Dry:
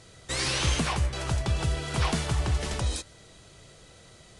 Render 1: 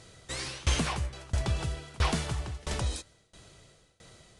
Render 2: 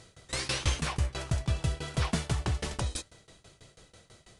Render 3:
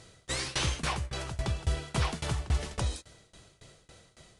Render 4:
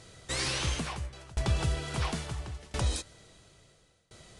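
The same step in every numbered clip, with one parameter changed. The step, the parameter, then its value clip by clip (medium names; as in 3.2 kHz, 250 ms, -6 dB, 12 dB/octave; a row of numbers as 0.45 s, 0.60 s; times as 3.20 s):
tremolo, rate: 1.5 Hz, 6.1 Hz, 3.6 Hz, 0.73 Hz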